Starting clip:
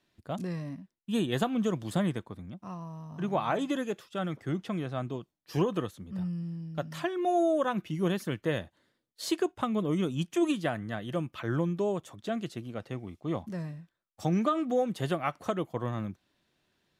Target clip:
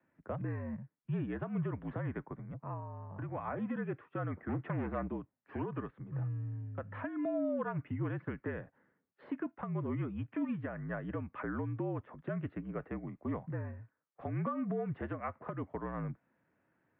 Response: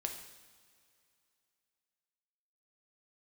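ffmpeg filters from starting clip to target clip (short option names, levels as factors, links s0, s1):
-filter_complex "[0:a]acrossover=split=230|1300[s0][s1][s2];[s0]acompressor=threshold=0.0158:ratio=4[s3];[s1]acompressor=threshold=0.0126:ratio=4[s4];[s2]acompressor=threshold=0.00891:ratio=4[s5];[s3][s4][s5]amix=inputs=3:normalize=0,alimiter=level_in=1.41:limit=0.0631:level=0:latency=1:release=189,volume=0.708,asplit=3[s6][s7][s8];[s6]afade=t=out:st=2.79:d=0.02[s9];[s7]acompressor=threshold=0.0126:ratio=4,afade=t=in:st=2.79:d=0.02,afade=t=out:st=3.33:d=0.02[s10];[s8]afade=t=in:st=3.33:d=0.02[s11];[s9][s10][s11]amix=inputs=3:normalize=0,asettb=1/sr,asplit=3[s12][s13][s14];[s12]atrim=end=4.494[s15];[s13]atrim=start=4.49:end=5.08,asetpts=PTS-STARTPTS,afade=t=in:d=0.004:c=qsin,afade=t=out:st=0.586:d=0.004:c=qsin,aeval=exprs='0.0447*(cos(1*acos(clip(val(0)/0.0447,-1,1)))-cos(1*PI/2))+0.0126*(cos(4*acos(clip(val(0)/0.0447,-1,1)))-cos(4*PI/2))+0.00447*(cos(5*acos(clip(val(0)/0.0447,-1,1)))-cos(5*PI/2))':c=same[s16];[s14]atrim=start=5.076[s17];[s15][s16]acrossfade=d=0.004:c1=hsin:c2=qsin[s18];[s18][s17]acrossfade=d=0.004:c1=qsin:c2=hsin,highpass=f=170:t=q:w=0.5412,highpass=f=170:t=q:w=1.307,lowpass=f=2100:t=q:w=0.5176,lowpass=f=2100:t=q:w=0.7071,lowpass=f=2100:t=q:w=1.932,afreqshift=-56,volume=1.12" -ar 32000 -c:a libvorbis -b:a 128k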